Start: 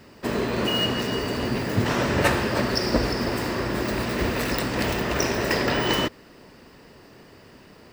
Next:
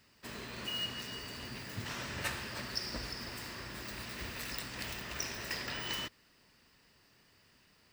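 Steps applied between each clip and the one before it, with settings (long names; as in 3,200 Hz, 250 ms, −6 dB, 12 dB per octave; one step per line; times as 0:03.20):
guitar amp tone stack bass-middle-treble 5-5-5
level −3.5 dB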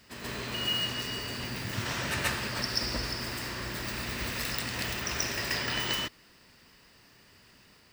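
backwards echo 133 ms −4.5 dB
level +6.5 dB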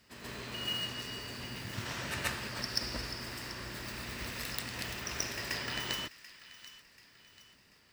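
harmonic generator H 3 −13 dB, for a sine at −12 dBFS
delay with a high-pass on its return 736 ms, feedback 43%, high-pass 1,400 Hz, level −15.5 dB
level +3 dB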